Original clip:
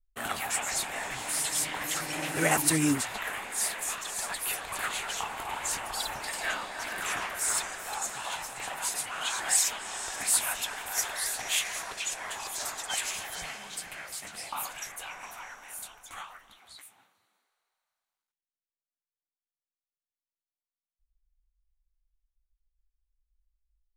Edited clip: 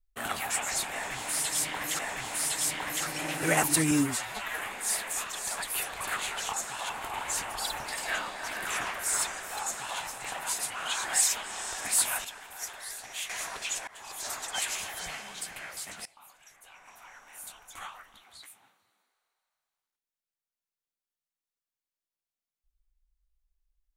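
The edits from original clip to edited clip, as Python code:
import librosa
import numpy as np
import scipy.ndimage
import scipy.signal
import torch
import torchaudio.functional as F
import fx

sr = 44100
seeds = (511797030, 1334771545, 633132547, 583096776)

y = fx.edit(x, sr, fx.repeat(start_s=0.93, length_s=1.06, count=2),
    fx.stretch_span(start_s=2.85, length_s=0.45, factor=1.5),
    fx.duplicate(start_s=7.99, length_s=0.36, to_s=5.25),
    fx.clip_gain(start_s=10.6, length_s=1.05, db=-8.5),
    fx.fade_in_from(start_s=12.23, length_s=0.64, curve='qsin', floor_db=-21.5),
    fx.fade_in_from(start_s=14.41, length_s=1.68, curve='qua', floor_db=-21.0), tone=tone)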